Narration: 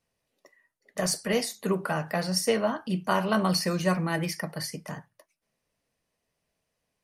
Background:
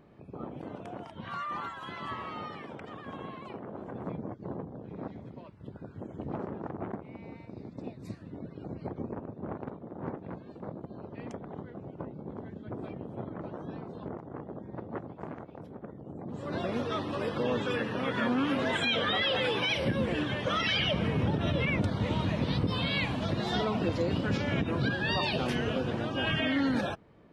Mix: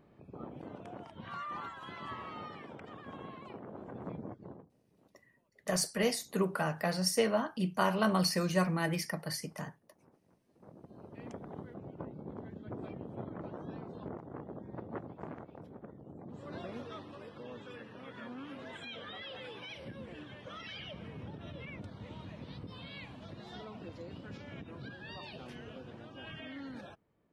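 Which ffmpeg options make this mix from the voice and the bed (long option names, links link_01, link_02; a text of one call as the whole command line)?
ffmpeg -i stem1.wav -i stem2.wav -filter_complex "[0:a]adelay=4700,volume=-4dB[link_01];[1:a]volume=20dB,afade=type=out:start_time=4.3:duration=0.4:silence=0.0668344,afade=type=in:start_time=10.47:duration=0.96:silence=0.0562341,afade=type=out:start_time=15.28:duration=1.99:silence=0.211349[link_02];[link_01][link_02]amix=inputs=2:normalize=0" out.wav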